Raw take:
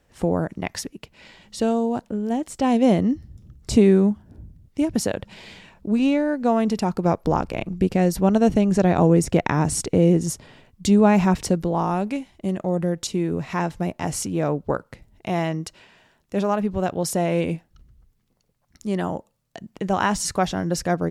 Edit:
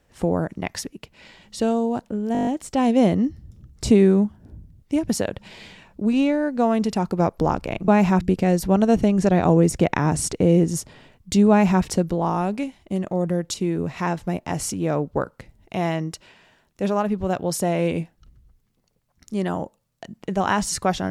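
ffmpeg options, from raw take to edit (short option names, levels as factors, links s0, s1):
-filter_complex "[0:a]asplit=10[s0][s1][s2][s3][s4][s5][s6][s7][s8][s9];[s0]atrim=end=2.352[s10];[s1]atrim=start=2.328:end=2.352[s11];[s2]atrim=start=2.328:end=2.352[s12];[s3]atrim=start=2.328:end=2.352[s13];[s4]atrim=start=2.328:end=2.352[s14];[s5]atrim=start=2.328:end=2.352[s15];[s6]atrim=start=2.328:end=2.352[s16];[s7]atrim=start=2.328:end=7.742[s17];[s8]atrim=start=11.028:end=11.362[s18];[s9]atrim=start=7.738[s19];[s10][s11]acrossfade=d=0.004:c1=hsin:c2=hsin[s20];[s20][s12]acrossfade=d=0.004:c1=hsin:c2=hsin[s21];[s21][s13]acrossfade=d=0.004:c1=hsin:c2=hsin[s22];[s22][s14]acrossfade=d=0.004:c1=hsin:c2=hsin[s23];[s23][s15]acrossfade=d=0.004:c1=hsin:c2=hsin[s24];[s24][s16]acrossfade=d=0.004:c1=hsin:c2=hsin[s25];[s25][s17]acrossfade=d=0.004:c1=hsin:c2=hsin[s26];[s26][s18]acrossfade=d=0.004:c1=hsin:c2=hsin[s27];[s27][s19]acrossfade=d=0.004:c1=hsin:c2=hsin"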